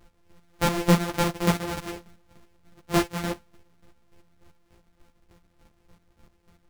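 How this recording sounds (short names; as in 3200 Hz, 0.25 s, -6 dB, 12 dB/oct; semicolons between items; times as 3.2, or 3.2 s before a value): a buzz of ramps at a fixed pitch in blocks of 256 samples; chopped level 3.4 Hz, depth 65%, duty 30%; a shimmering, thickened sound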